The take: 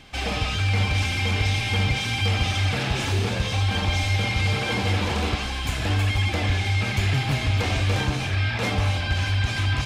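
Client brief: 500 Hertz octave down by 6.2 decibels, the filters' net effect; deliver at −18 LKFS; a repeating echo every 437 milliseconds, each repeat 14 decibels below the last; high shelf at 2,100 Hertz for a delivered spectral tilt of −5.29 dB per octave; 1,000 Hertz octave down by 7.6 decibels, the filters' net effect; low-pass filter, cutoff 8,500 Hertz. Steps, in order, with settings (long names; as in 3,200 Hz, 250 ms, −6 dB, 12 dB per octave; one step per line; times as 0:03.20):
low-pass filter 8,500 Hz
parametric band 500 Hz −5.5 dB
parametric band 1,000 Hz −7.5 dB
high-shelf EQ 2,100 Hz −3.5 dB
repeating echo 437 ms, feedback 20%, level −14 dB
level +6.5 dB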